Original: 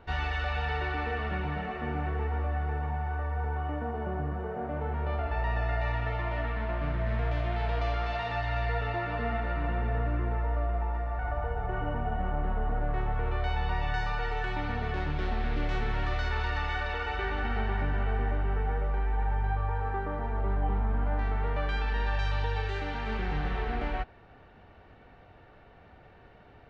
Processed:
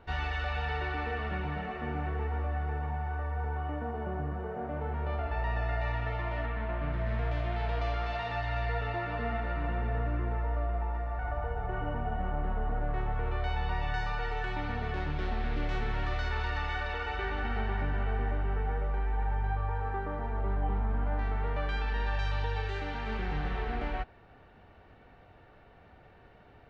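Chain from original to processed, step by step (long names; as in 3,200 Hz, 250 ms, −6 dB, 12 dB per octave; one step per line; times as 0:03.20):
0:06.46–0:06.93: low-pass filter 3,700 Hz 12 dB per octave
level −2 dB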